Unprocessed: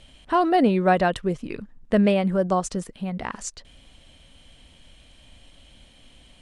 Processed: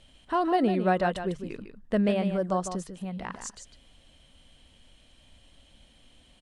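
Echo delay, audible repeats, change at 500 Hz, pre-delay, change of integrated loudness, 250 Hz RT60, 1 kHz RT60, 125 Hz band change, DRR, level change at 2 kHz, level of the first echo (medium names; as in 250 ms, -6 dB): 152 ms, 1, -5.5 dB, no reverb, -5.5 dB, no reverb, no reverb, -5.5 dB, no reverb, -6.0 dB, -9.0 dB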